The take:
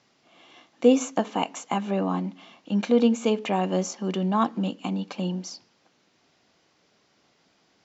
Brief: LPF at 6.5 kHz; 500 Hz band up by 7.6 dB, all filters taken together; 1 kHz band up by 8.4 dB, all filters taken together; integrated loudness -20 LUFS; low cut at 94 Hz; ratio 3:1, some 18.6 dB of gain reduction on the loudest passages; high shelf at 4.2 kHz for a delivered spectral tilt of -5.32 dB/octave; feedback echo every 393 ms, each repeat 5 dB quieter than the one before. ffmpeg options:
-af "highpass=94,lowpass=6500,equalizer=f=500:t=o:g=6.5,equalizer=f=1000:t=o:g=8,highshelf=f=4200:g=5.5,acompressor=threshold=0.0251:ratio=3,aecho=1:1:393|786|1179|1572|1965|2358|2751:0.562|0.315|0.176|0.0988|0.0553|0.031|0.0173,volume=4.22"

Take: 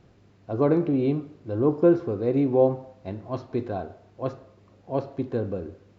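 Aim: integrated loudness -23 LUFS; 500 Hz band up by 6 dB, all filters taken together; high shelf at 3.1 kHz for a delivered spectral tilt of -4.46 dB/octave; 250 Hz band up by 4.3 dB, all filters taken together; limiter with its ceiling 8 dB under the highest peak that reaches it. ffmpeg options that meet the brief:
-af "equalizer=f=250:t=o:g=3,equalizer=f=500:t=o:g=6,highshelf=f=3100:g=7.5,alimiter=limit=0.299:level=0:latency=1"

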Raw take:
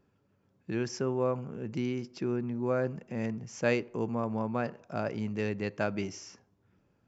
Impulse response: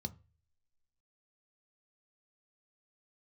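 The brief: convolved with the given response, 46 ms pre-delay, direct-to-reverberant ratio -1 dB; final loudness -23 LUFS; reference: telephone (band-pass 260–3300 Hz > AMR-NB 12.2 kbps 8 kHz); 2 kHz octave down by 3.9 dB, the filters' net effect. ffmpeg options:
-filter_complex "[0:a]equalizer=f=2000:t=o:g=-4.5,asplit=2[s0][s1];[1:a]atrim=start_sample=2205,adelay=46[s2];[s1][s2]afir=irnorm=-1:irlink=0,volume=1.5[s3];[s0][s3]amix=inputs=2:normalize=0,highpass=260,lowpass=3300,volume=1.88" -ar 8000 -c:a libopencore_amrnb -b:a 12200

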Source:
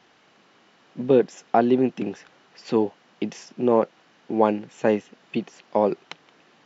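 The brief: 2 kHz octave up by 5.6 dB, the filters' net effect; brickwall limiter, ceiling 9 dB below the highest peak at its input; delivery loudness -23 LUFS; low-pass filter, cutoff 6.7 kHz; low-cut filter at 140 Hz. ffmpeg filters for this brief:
-af "highpass=140,lowpass=6700,equalizer=f=2000:t=o:g=7.5,volume=1.58,alimiter=limit=0.398:level=0:latency=1"

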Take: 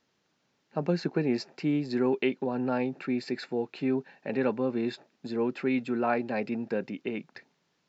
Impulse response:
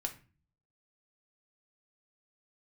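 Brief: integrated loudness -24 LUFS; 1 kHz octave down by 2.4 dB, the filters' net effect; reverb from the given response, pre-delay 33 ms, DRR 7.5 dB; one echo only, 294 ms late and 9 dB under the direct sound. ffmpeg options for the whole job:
-filter_complex "[0:a]equalizer=f=1000:t=o:g=-3.5,aecho=1:1:294:0.355,asplit=2[s0][s1];[1:a]atrim=start_sample=2205,adelay=33[s2];[s1][s2]afir=irnorm=-1:irlink=0,volume=0.398[s3];[s0][s3]amix=inputs=2:normalize=0,volume=2"

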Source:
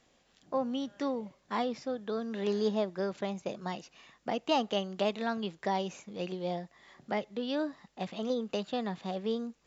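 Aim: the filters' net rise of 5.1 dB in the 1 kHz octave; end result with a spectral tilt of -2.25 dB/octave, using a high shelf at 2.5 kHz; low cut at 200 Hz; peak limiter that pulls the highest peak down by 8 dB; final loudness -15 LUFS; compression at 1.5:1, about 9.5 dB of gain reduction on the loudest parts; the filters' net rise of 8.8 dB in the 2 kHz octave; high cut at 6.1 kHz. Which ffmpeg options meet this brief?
-af "highpass=200,lowpass=6100,equalizer=f=1000:t=o:g=4.5,equalizer=f=2000:t=o:g=7,highshelf=f=2500:g=6,acompressor=threshold=0.00501:ratio=1.5,volume=21.1,alimiter=limit=0.75:level=0:latency=1"

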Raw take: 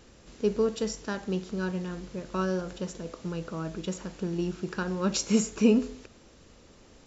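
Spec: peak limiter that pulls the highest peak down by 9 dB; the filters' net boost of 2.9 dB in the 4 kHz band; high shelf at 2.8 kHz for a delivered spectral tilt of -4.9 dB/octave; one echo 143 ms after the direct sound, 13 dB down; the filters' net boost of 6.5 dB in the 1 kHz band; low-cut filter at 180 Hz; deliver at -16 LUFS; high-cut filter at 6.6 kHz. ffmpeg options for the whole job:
-af "highpass=180,lowpass=6600,equalizer=f=1000:t=o:g=8.5,highshelf=f=2800:g=-5,equalizer=f=4000:t=o:g=9,alimiter=limit=0.106:level=0:latency=1,aecho=1:1:143:0.224,volume=6.68"

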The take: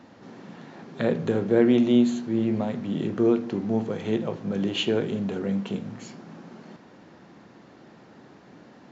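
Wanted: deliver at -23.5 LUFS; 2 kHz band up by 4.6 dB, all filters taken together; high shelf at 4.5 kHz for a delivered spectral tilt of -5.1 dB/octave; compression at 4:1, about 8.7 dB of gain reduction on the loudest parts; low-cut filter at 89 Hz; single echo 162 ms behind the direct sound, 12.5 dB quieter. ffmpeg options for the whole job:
-af "highpass=89,equalizer=f=2000:t=o:g=7,highshelf=f=4500:g=-4.5,acompressor=threshold=0.0562:ratio=4,aecho=1:1:162:0.237,volume=2"

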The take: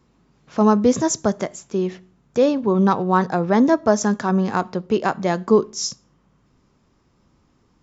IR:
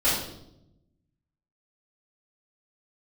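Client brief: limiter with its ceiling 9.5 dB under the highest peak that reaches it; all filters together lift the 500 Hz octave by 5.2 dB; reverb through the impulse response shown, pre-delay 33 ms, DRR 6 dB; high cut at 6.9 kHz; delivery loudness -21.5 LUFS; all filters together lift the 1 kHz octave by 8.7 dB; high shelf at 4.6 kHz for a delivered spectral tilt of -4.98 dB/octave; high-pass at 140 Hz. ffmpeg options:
-filter_complex "[0:a]highpass=140,lowpass=6900,equalizer=f=500:t=o:g=4,equalizer=f=1000:t=o:g=9,highshelf=f=4600:g=7.5,alimiter=limit=0.473:level=0:latency=1,asplit=2[s0][s1];[1:a]atrim=start_sample=2205,adelay=33[s2];[s1][s2]afir=irnorm=-1:irlink=0,volume=0.0944[s3];[s0][s3]amix=inputs=2:normalize=0,volume=0.631"

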